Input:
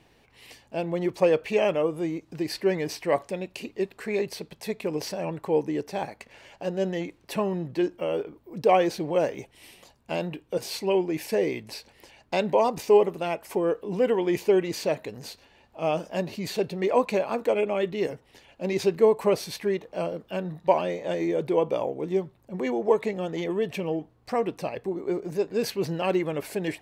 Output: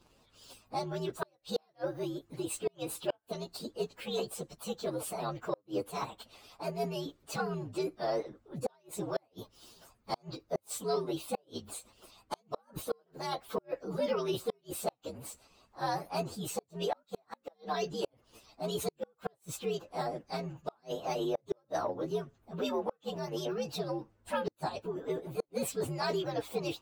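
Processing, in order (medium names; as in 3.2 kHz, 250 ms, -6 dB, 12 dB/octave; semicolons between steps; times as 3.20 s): frequency axis rescaled in octaves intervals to 121%; harmonic-percussive split harmonic -9 dB; in parallel at -10 dB: saturation -30 dBFS, distortion -9 dB; on the sum: inverted gate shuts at -21 dBFS, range -39 dB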